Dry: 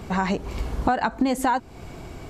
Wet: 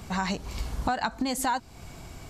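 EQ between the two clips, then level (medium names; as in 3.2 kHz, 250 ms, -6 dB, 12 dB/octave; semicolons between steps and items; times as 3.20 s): tone controls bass 0 dB, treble +7 dB; peaking EQ 390 Hz -6.5 dB 1.2 oct; dynamic bell 4.4 kHz, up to +4 dB, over -47 dBFS, Q 1.7; -4.0 dB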